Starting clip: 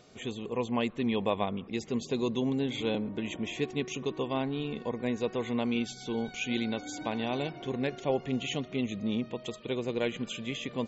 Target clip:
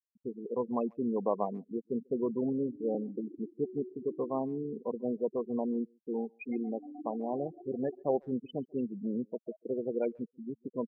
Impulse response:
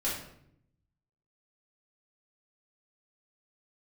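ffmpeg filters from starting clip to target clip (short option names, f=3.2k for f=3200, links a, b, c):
-filter_complex "[0:a]bandpass=f=510:t=q:w=0.53:csg=0,afftfilt=real='re*gte(hypot(re,im),0.0398)':imag='im*gte(hypot(re,im),0.0398)':win_size=1024:overlap=0.75,asplit=2[a][b];[b]adelay=140,highpass=300,lowpass=3.4k,asoftclip=type=hard:threshold=-24.5dB,volume=-29dB[c];[a][c]amix=inputs=2:normalize=0"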